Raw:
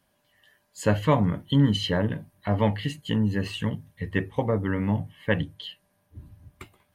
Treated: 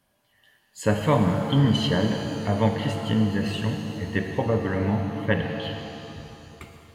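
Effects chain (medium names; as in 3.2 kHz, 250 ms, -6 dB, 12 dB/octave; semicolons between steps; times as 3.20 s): pitch-shifted reverb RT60 2.8 s, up +7 st, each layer -8 dB, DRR 4 dB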